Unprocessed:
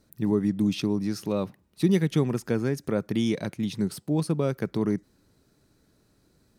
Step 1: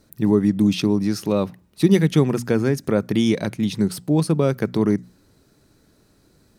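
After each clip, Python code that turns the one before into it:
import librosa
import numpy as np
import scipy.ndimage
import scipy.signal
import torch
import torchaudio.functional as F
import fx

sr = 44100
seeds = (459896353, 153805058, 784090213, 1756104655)

y = fx.hum_notches(x, sr, base_hz=60, count=4)
y = y * 10.0 ** (7.0 / 20.0)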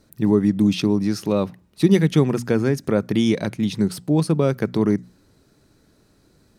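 y = fx.high_shelf(x, sr, hz=11000.0, db=-5.5)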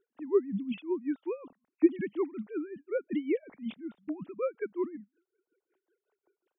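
y = fx.sine_speech(x, sr)
y = y * 10.0 ** (-19 * (0.5 - 0.5 * np.cos(2.0 * np.pi * 5.4 * np.arange(len(y)) / sr)) / 20.0)
y = y * 10.0 ** (-8.5 / 20.0)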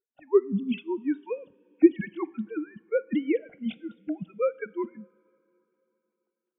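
y = fx.noise_reduce_blind(x, sr, reduce_db=21)
y = fx.rev_double_slope(y, sr, seeds[0], early_s=0.41, late_s=3.3, knee_db=-18, drr_db=18.0)
y = y * 10.0 ** (6.0 / 20.0)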